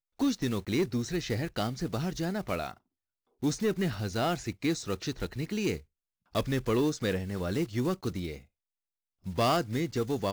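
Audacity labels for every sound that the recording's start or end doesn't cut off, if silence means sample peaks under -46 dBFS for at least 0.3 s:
3.430000	5.810000	sound
6.350000	8.410000	sound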